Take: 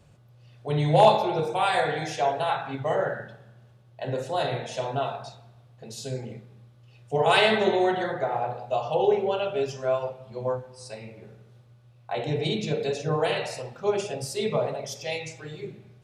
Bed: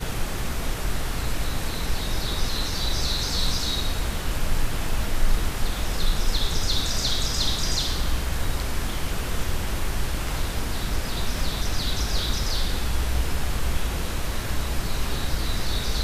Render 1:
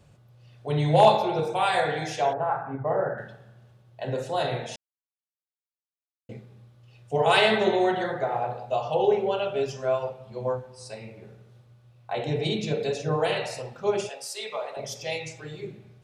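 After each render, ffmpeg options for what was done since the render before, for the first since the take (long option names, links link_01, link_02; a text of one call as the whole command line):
ffmpeg -i in.wav -filter_complex "[0:a]asettb=1/sr,asplit=3[link_01][link_02][link_03];[link_01]atrim=end=2.334[link_04];[link_02]atrim=start=2.33:end=3.18,asetpts=PTS-STARTPTS,afade=type=in:duration=0.004:curve=qsin,afade=type=out:start_time=0.846:duration=0.004:curve=qsin,lowpass=frequency=1500:width=0.5412,lowpass=frequency=1500:width=1.3066[link_05];[link_03]atrim=start=3.176[link_06];[link_04][link_05]acrossfade=duration=0.004:curve1=hsin:curve2=qsin[link_07];[link_07][link_06]acrossfade=duration=0.004:curve1=qsin:curve2=hsin,asettb=1/sr,asplit=3[link_08][link_09][link_10];[link_08]atrim=end=14.094[link_11];[link_09]atrim=start=14.09:end=14.77,asetpts=PTS-STARTPTS,afade=type=in:duration=0.004:curve=qsin,afade=type=out:start_time=0.676:duration=0.004:curve=qsin,highpass=820[link_12];[link_10]atrim=start=14.766[link_13];[link_11][link_12]acrossfade=duration=0.004:curve1=hsin:curve2=qsin[link_14];[link_14][link_13]acrossfade=duration=0.004:curve1=qsin:curve2=hsin,asplit=3[link_15][link_16][link_17];[link_15]atrim=end=4.76,asetpts=PTS-STARTPTS,afade=type=out:start_time=4.756:duration=0.004:curve=hsin[link_18];[link_16]atrim=start=4.76:end=6.29,asetpts=PTS-STARTPTS,volume=0[link_19];[link_17]atrim=start=6.29,asetpts=PTS-STARTPTS,afade=type=in:duration=0.004:curve=hsin[link_20];[link_18][link_19][link_20]concat=n=3:v=0:a=1" out.wav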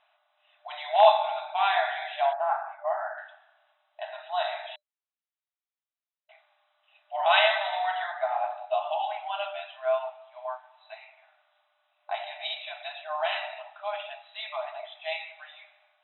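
ffmpeg -i in.wav -af "afftfilt=real='re*between(b*sr/4096,600,4000)':imag='im*between(b*sr/4096,600,4000)':win_size=4096:overlap=0.75" out.wav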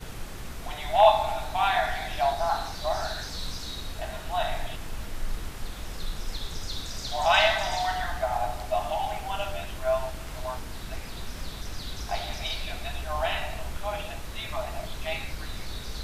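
ffmpeg -i in.wav -i bed.wav -filter_complex "[1:a]volume=-10.5dB[link_01];[0:a][link_01]amix=inputs=2:normalize=0" out.wav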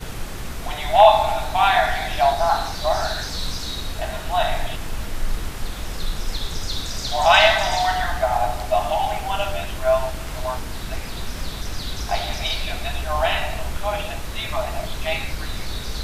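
ffmpeg -i in.wav -af "volume=7.5dB,alimiter=limit=-1dB:level=0:latency=1" out.wav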